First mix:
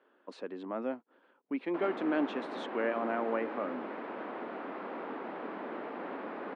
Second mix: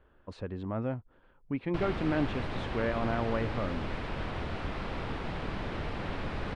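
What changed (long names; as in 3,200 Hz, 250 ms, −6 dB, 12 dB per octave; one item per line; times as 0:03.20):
background: remove low-pass filter 1,500 Hz 12 dB per octave
master: remove Butterworth high-pass 240 Hz 36 dB per octave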